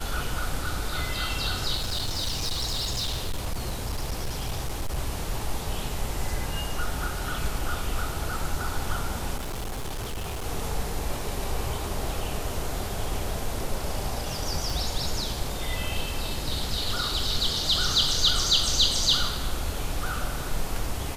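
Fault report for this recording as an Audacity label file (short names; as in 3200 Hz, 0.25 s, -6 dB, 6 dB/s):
1.750000	4.980000	clipped -24.5 dBFS
9.360000	10.460000	clipped -28.5 dBFS
14.700000	14.700000	pop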